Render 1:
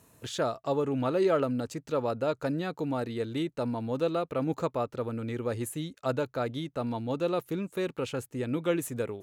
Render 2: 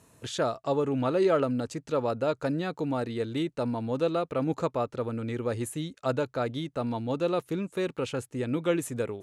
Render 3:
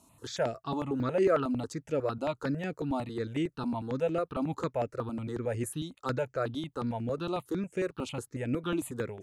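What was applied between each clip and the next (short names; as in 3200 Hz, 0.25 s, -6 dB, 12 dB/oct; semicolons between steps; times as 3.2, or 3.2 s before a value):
LPF 11000 Hz 24 dB/oct; gain +1.5 dB
step phaser 11 Hz 470–3900 Hz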